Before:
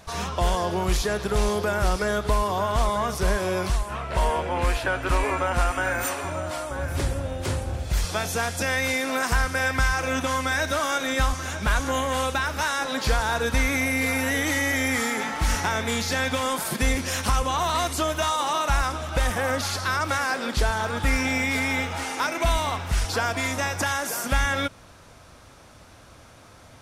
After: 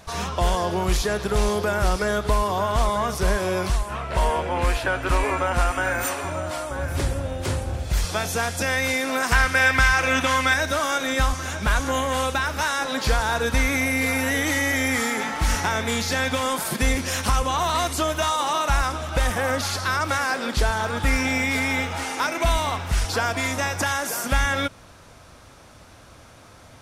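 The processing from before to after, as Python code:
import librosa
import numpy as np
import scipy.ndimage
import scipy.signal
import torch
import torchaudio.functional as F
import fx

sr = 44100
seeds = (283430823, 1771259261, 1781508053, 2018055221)

y = fx.peak_eq(x, sr, hz=2300.0, db=7.5, octaves=1.8, at=(9.31, 10.54))
y = F.gain(torch.from_numpy(y), 1.5).numpy()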